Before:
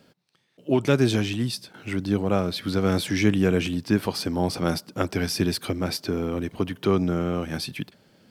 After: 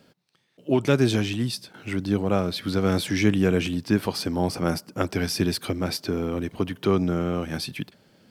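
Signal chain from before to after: 4.5–5.01 bell 3700 Hz -8.5 dB 0.44 oct

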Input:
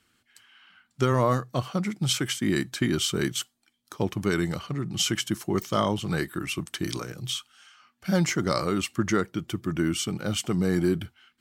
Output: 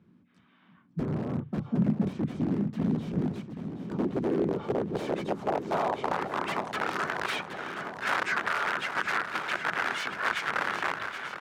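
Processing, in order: high shelf 8200 Hz -7.5 dB; notch 1600 Hz, Q 19; in parallel at -1 dB: limiter -23 dBFS, peak gain reduction 11.5 dB; on the sum: compressor 12:1, threshold -29 dBFS, peak gain reduction 14 dB; harmoniser -5 st -1 dB, +3 st -1 dB; wrapped overs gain 22.5 dB; band-pass sweep 200 Hz -> 1500 Hz, 3.23–7.12; swung echo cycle 1.287 s, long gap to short 1.5:1, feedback 56%, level -10 dB; gain +9 dB

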